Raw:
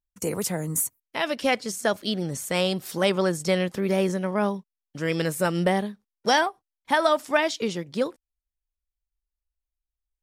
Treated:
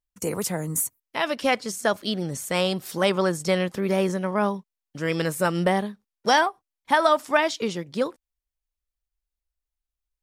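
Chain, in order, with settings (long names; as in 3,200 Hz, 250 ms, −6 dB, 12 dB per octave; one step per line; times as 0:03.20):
dynamic equaliser 1,100 Hz, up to +4 dB, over −39 dBFS, Q 1.6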